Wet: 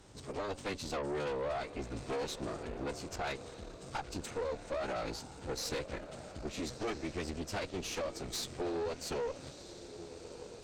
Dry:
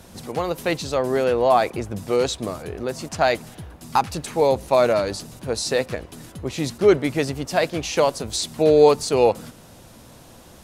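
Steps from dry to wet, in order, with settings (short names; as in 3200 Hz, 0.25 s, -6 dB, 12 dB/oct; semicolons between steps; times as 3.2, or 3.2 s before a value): compressor 12:1, threshold -21 dBFS, peak gain reduction 13 dB; formant-preserving pitch shift -10 st; on a send: diffused feedback echo 1.311 s, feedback 42%, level -13 dB; on the sum: tube stage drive 26 dB, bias 0.75; gain -5.5 dB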